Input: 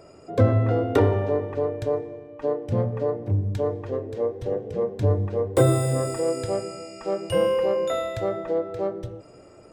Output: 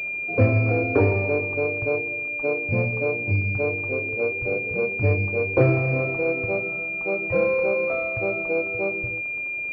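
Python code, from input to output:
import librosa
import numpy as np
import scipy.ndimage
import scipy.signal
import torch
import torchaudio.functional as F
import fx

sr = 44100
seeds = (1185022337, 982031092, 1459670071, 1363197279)

y = fx.dmg_crackle(x, sr, seeds[0], per_s=210.0, level_db=-34.0)
y = fx.pwm(y, sr, carrier_hz=2400.0)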